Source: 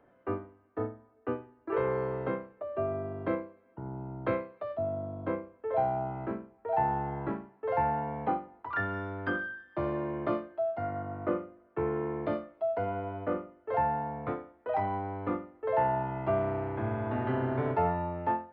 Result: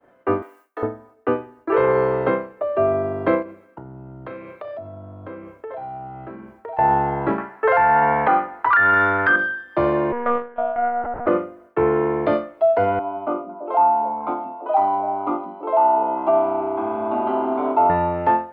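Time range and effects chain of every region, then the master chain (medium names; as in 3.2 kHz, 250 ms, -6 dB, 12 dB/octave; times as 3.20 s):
0.42–0.83 s: high-pass 250 Hz 24 dB/octave + tilt EQ +4 dB/octave + compression 1.5:1, threshold -49 dBFS
3.42–6.79 s: doubling 31 ms -6 dB + flutter echo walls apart 10.3 m, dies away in 0.39 s + compression 8:1, threshold -44 dBFS
7.38–9.36 s: peaking EQ 1.6 kHz +14 dB 1.6 oct + compression 2:1, threshold -24 dBFS
10.12–11.27 s: low-pass 1.7 kHz + tilt shelf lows -5 dB, about 710 Hz + monotone LPC vocoder at 8 kHz 240 Hz
12.99–17.90 s: three-band isolator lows -12 dB, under 290 Hz, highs -13 dB, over 3 kHz + static phaser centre 480 Hz, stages 6 + repeats whose band climbs or falls 167 ms, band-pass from 180 Hz, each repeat 1.4 oct, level -3.5 dB
whole clip: expander -58 dBFS; tone controls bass -7 dB, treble +1 dB; loudness maximiser +21.5 dB; trim -7 dB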